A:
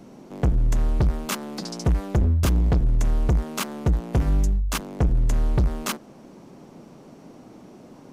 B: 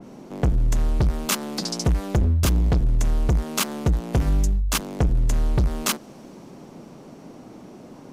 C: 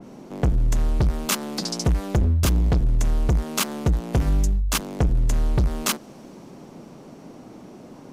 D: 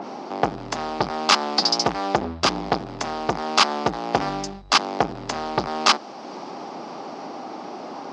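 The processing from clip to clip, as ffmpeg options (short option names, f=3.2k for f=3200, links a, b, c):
-af "acompressor=threshold=-25dB:ratio=1.5,adynamicequalizer=threshold=0.00501:dfrequency=2600:dqfactor=0.7:tfrequency=2600:tqfactor=0.7:attack=5:release=100:ratio=0.375:range=2.5:mode=boostabove:tftype=highshelf,volume=3dB"
-af anull
-af "highpass=370,equalizer=f=490:t=q:w=4:g=-3,equalizer=f=800:t=q:w=4:g=9,equalizer=f=1.2k:t=q:w=4:g=5,equalizer=f=4.9k:t=q:w=4:g=7,lowpass=f=5.3k:w=0.5412,lowpass=f=5.3k:w=1.3066,acompressor=mode=upward:threshold=-35dB:ratio=2.5,volume=7dB"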